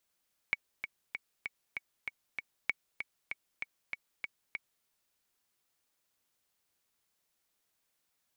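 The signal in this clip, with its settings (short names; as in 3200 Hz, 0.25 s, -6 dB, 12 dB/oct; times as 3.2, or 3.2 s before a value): metronome 194 bpm, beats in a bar 7, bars 2, 2240 Hz, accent 8 dB -15.5 dBFS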